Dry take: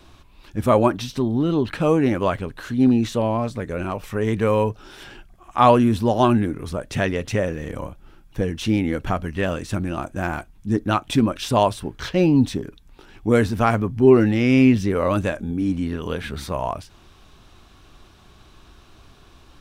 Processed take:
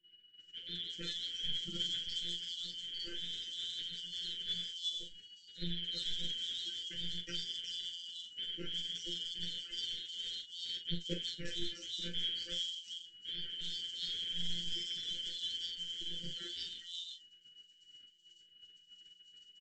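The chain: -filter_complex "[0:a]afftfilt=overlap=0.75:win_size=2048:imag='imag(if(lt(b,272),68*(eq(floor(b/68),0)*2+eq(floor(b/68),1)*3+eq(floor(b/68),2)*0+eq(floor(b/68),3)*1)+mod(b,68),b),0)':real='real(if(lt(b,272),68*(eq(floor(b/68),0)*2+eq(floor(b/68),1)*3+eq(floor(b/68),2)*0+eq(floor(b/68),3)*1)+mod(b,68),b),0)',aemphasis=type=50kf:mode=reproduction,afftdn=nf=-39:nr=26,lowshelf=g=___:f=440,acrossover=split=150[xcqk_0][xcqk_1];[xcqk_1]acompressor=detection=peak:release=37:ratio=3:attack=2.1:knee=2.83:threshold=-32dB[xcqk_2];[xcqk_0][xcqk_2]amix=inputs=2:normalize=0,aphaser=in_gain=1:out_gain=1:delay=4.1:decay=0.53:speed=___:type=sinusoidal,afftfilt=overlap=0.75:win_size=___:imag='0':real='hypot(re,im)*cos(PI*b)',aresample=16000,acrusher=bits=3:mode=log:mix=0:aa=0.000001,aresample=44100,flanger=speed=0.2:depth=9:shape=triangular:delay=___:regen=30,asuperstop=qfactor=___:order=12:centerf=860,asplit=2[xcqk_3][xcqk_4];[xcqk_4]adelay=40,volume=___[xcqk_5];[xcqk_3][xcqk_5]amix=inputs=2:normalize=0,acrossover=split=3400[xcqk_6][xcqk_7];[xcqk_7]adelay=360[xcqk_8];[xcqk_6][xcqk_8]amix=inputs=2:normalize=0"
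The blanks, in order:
8.5, 0.54, 1024, 8.4, 0.86, -8.5dB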